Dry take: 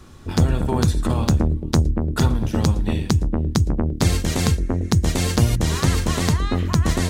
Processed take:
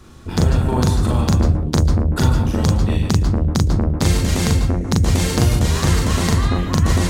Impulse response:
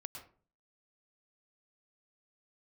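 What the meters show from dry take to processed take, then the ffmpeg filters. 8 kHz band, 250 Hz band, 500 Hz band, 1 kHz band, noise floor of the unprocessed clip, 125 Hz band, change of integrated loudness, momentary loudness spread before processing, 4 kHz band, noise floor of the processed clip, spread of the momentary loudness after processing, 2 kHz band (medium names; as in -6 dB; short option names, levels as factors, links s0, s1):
+2.5 dB, +2.5 dB, +2.5 dB, +3.0 dB, -31 dBFS, +3.5 dB, +3.0 dB, 2 LU, +2.5 dB, -26 dBFS, 2 LU, +2.5 dB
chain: -filter_complex "[0:a]asplit=2[s0][s1];[1:a]atrim=start_sample=2205,adelay=40[s2];[s1][s2]afir=irnorm=-1:irlink=0,volume=1.41[s3];[s0][s3]amix=inputs=2:normalize=0"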